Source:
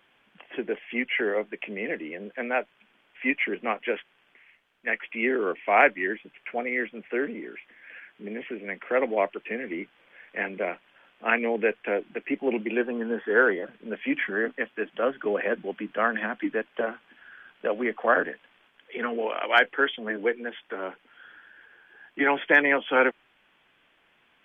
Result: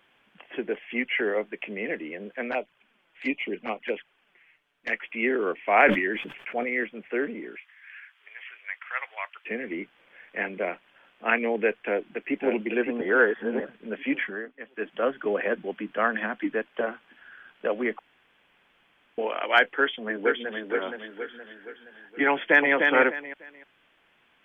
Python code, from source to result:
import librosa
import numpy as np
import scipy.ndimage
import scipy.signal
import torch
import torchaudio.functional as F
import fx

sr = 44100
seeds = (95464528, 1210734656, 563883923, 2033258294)

y = fx.env_flanger(x, sr, rest_ms=7.3, full_db=-23.5, at=(2.51, 4.92))
y = fx.sustainer(y, sr, db_per_s=69.0, at=(5.6, 6.84))
y = fx.highpass(y, sr, hz=1100.0, slope=24, at=(7.57, 9.45))
y = fx.echo_throw(y, sr, start_s=11.73, length_s=0.78, ms=560, feedback_pct=35, wet_db=-5.5)
y = fx.echo_throw(y, sr, start_s=19.78, length_s=0.92, ms=470, feedback_pct=45, wet_db=-4.0)
y = fx.echo_throw(y, sr, start_s=22.32, length_s=0.41, ms=300, feedback_pct=25, wet_db=-4.0)
y = fx.edit(y, sr, fx.reverse_span(start_s=13.01, length_s=0.59),
    fx.fade_down_up(start_s=14.18, length_s=0.7, db=-13.5, fade_s=0.28),
    fx.room_tone_fill(start_s=17.99, length_s=1.19), tone=tone)